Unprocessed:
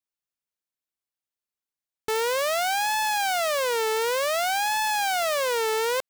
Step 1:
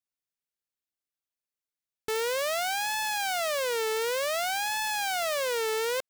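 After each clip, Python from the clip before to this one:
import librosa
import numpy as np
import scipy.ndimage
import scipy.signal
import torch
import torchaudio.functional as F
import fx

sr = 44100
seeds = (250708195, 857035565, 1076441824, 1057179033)

y = fx.peak_eq(x, sr, hz=950.0, db=-5.0, octaves=0.7)
y = F.gain(torch.from_numpy(y), -3.0).numpy()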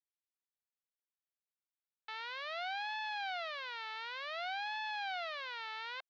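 y = scipy.signal.sosfilt(scipy.signal.ellip(3, 1.0, 40, [730.0, 4100.0], 'bandpass', fs=sr, output='sos'), x)
y = F.gain(torch.from_numpy(y), -8.5).numpy()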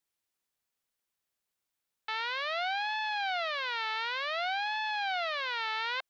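y = fx.rider(x, sr, range_db=10, speed_s=0.5)
y = F.gain(torch.from_numpy(y), 8.0).numpy()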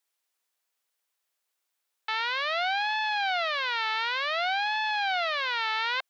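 y = scipy.signal.sosfilt(scipy.signal.butter(2, 470.0, 'highpass', fs=sr, output='sos'), x)
y = F.gain(torch.from_numpy(y), 5.0).numpy()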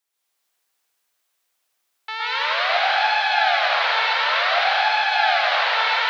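y = fx.rev_plate(x, sr, seeds[0], rt60_s=3.3, hf_ratio=0.95, predelay_ms=100, drr_db=-8.0)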